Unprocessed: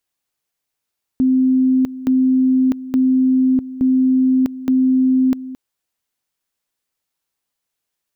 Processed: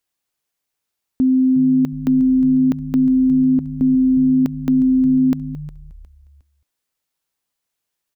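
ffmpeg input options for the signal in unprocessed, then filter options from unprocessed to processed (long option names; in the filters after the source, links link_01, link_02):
-f lavfi -i "aevalsrc='pow(10,(-11-15.5*gte(mod(t,0.87),0.65))/20)*sin(2*PI*259*t)':duration=4.35:sample_rate=44100"
-filter_complex "[0:a]asplit=4[link_01][link_02][link_03][link_04];[link_02]adelay=359,afreqshift=-110,volume=-16dB[link_05];[link_03]adelay=718,afreqshift=-220,volume=-25.1dB[link_06];[link_04]adelay=1077,afreqshift=-330,volume=-34.2dB[link_07];[link_01][link_05][link_06][link_07]amix=inputs=4:normalize=0"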